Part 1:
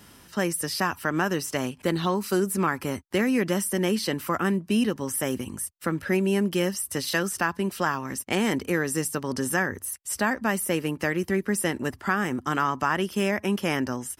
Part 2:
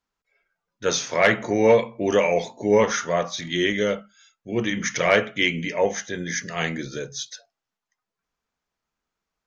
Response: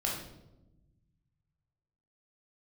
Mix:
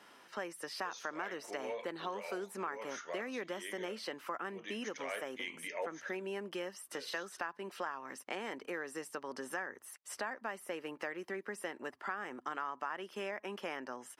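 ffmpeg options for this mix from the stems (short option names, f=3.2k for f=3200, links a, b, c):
-filter_complex "[0:a]lowpass=f=2k:p=1,volume=-1dB,asplit=2[a][b];[1:a]volume=-2.5dB,asplit=3[c][d][e];[c]atrim=end=6.25,asetpts=PTS-STARTPTS,afade=t=out:st=6.246:d=0.004:c=hsin[f];[d]atrim=start=6.25:end=6.92,asetpts=PTS-STARTPTS,volume=0[g];[e]atrim=start=6.92,asetpts=PTS-STARTPTS,afade=t=in:d=0.004:c=hsin[h];[f][g][h]concat=n=3:v=0:a=1[i];[b]apad=whole_len=417483[j];[i][j]sidechaincompress=threshold=-36dB:ratio=5:attack=10:release=699[k];[a][k]amix=inputs=2:normalize=0,highpass=520,highshelf=f=9.4k:g=-5,acompressor=threshold=-41dB:ratio=2.5"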